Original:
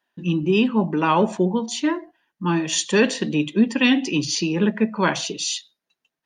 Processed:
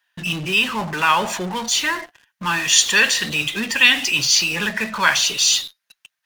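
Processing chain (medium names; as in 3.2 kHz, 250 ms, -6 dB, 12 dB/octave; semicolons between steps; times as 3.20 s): FFT filter 100 Hz 0 dB, 290 Hz -13 dB, 1.6 kHz +13 dB; in parallel at -11 dB: fuzz box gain 42 dB, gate -49 dBFS; on the sum: trim -5 dB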